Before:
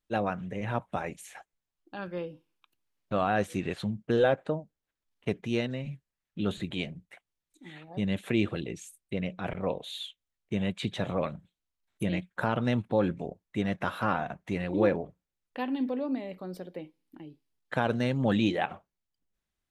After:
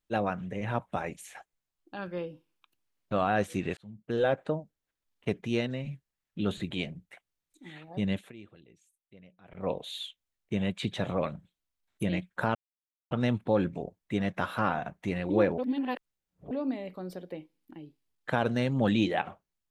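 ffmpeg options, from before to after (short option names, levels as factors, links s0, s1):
-filter_complex "[0:a]asplit=7[s0][s1][s2][s3][s4][s5][s6];[s0]atrim=end=3.77,asetpts=PTS-STARTPTS,afade=t=out:st=3.766:d=0.004:c=hsin[s7];[s1]atrim=start=3.77:end=8.32,asetpts=PTS-STARTPTS,afade=t=in:d=0.65,afade=t=out:st=4.35:d=0.2:silence=0.0794328[s8];[s2]atrim=start=8.32:end=9.5,asetpts=PTS-STARTPTS,volume=0.0794[s9];[s3]atrim=start=9.5:end=12.55,asetpts=PTS-STARTPTS,afade=t=in:d=0.2:silence=0.0794328,afade=t=out:st=3.046:d=0.004:c=hsin,apad=pad_dur=0.56[s10];[s4]atrim=start=12.55:end=15.022,asetpts=PTS-STARTPTS,afade=t=in:d=0.004:c=hsin[s11];[s5]atrim=start=15.018:end=15.952,asetpts=PTS-STARTPTS,areverse[s12];[s6]atrim=start=15.948[s13];[s7][s8][s9][s10][s11]concat=n=5:v=0:a=1[s14];[s14][s12]acrossfade=d=0.004:c1=hsin:c2=hsin[s15];[s15][s13]acrossfade=d=0.004:c1=hsin:c2=hsin"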